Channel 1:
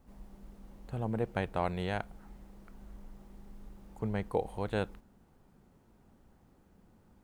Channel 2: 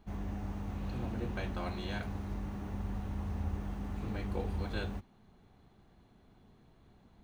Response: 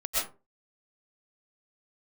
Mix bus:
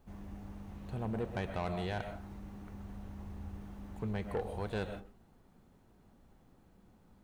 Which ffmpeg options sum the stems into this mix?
-filter_complex "[0:a]volume=-2.5dB,asplit=2[a][b];[b]volume=-17dB[c];[1:a]volume=-9dB[d];[2:a]atrim=start_sample=2205[e];[c][e]afir=irnorm=-1:irlink=0[f];[a][d][f]amix=inputs=3:normalize=0,asoftclip=type=tanh:threshold=-28.5dB"

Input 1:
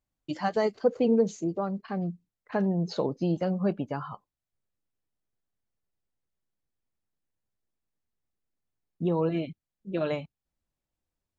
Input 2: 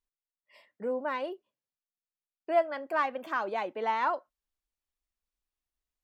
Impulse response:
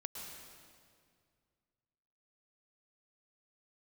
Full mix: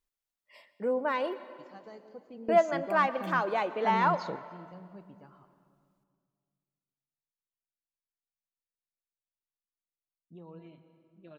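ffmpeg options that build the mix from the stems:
-filter_complex "[0:a]equalizer=f=480:w=1.5:g=-2.5,adelay=1300,volume=-8dB,asplit=2[a][b];[b]volume=-19dB[c];[1:a]acontrast=33,volume=-4.5dB,asplit=3[d][e][f];[e]volume=-7.5dB[g];[f]apad=whole_len=559559[h];[a][h]sidechaingate=range=-17dB:threshold=-54dB:ratio=16:detection=peak[i];[2:a]atrim=start_sample=2205[j];[c][g]amix=inputs=2:normalize=0[k];[k][j]afir=irnorm=-1:irlink=0[l];[i][d][l]amix=inputs=3:normalize=0"

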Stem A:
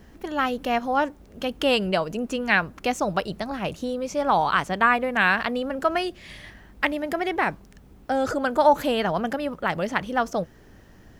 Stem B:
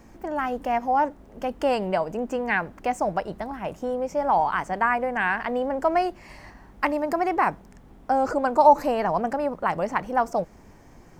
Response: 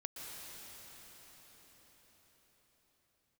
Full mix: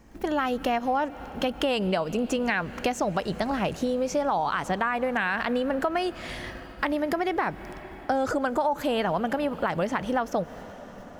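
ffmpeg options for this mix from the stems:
-filter_complex "[0:a]alimiter=limit=-14.5dB:level=0:latency=1:release=46,volume=2.5dB,asplit=2[a][b];[b]volume=-13.5dB[c];[1:a]volume=-4.5dB,asplit=2[d][e];[e]apad=whole_len=493895[f];[a][f]sidechaingate=range=-33dB:threshold=-51dB:ratio=16:detection=peak[g];[2:a]atrim=start_sample=2205[h];[c][h]afir=irnorm=-1:irlink=0[i];[g][d][i]amix=inputs=3:normalize=0,acompressor=threshold=-23dB:ratio=5"

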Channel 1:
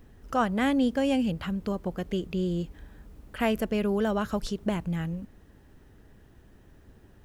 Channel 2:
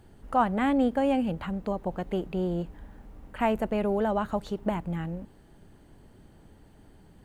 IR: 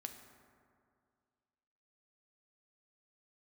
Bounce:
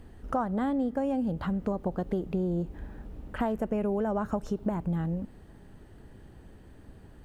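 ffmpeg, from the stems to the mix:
-filter_complex "[0:a]lowpass=3.3k,acompressor=threshold=-35dB:ratio=10,volume=0.5dB,asplit=2[a][b];[b]volume=-10.5dB[c];[1:a]equalizer=f=1.7k:t=o:w=0.76:g=-13,acompressor=threshold=-29dB:ratio=6,volume=-1dB[d];[2:a]atrim=start_sample=2205[e];[c][e]afir=irnorm=-1:irlink=0[f];[a][d][f]amix=inputs=3:normalize=0"

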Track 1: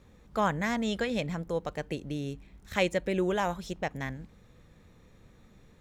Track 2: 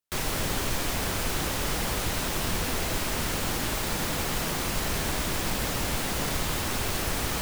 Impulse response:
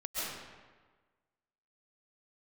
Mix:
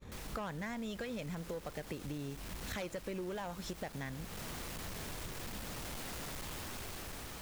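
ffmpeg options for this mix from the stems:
-filter_complex "[0:a]agate=range=-33dB:threshold=-52dB:ratio=3:detection=peak,acompressor=threshold=-49dB:ratio=1.5,aeval=exprs='0.0891*(cos(1*acos(clip(val(0)/0.0891,-1,1)))-cos(1*PI/2))+0.0355*(cos(5*acos(clip(val(0)/0.0891,-1,1)))-cos(5*PI/2))':c=same,volume=2dB[a];[1:a]dynaudnorm=f=440:g=5:m=7.5dB,volume=23dB,asoftclip=hard,volume=-23dB,volume=-17dB[b];[a][b]amix=inputs=2:normalize=0,acompressor=threshold=-40dB:ratio=5"

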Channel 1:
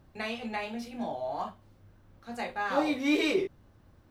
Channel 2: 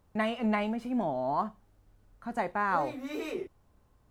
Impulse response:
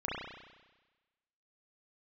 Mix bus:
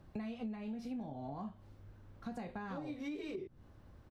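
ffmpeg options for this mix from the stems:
-filter_complex "[0:a]volume=-1dB[a];[1:a]tiltshelf=f=800:g=7,adelay=1.7,volume=-5dB[b];[a][b]amix=inputs=2:normalize=0,acrossover=split=350[c][d];[d]acompressor=threshold=-40dB:ratio=6[e];[c][e]amix=inputs=2:normalize=0,highshelf=f=8k:g=-6,acompressor=threshold=-40dB:ratio=6"

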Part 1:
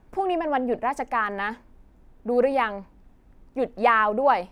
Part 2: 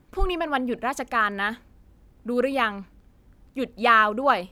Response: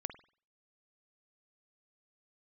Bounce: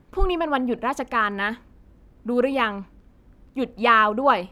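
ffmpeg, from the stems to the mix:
-filter_complex "[0:a]highpass=f=90:w=0.5412,highpass=f=90:w=1.3066,volume=-7dB,asplit=2[a][b];[b]volume=-10.5dB[c];[1:a]bandreject=f=790:w=12,volume=2.5dB[d];[2:a]atrim=start_sample=2205[e];[c][e]afir=irnorm=-1:irlink=0[f];[a][d][f]amix=inputs=3:normalize=0,highshelf=f=4.4k:g=-8"

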